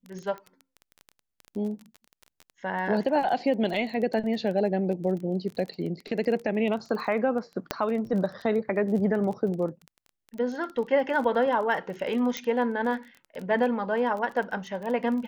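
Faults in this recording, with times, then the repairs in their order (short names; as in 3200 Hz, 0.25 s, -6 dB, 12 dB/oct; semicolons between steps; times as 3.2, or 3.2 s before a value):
crackle 20/s -33 dBFS
7.71 pop -10 dBFS
12.37 pop -13 dBFS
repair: de-click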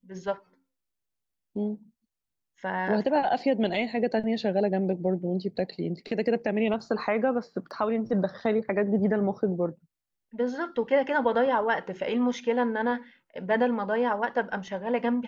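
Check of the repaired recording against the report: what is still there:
7.71 pop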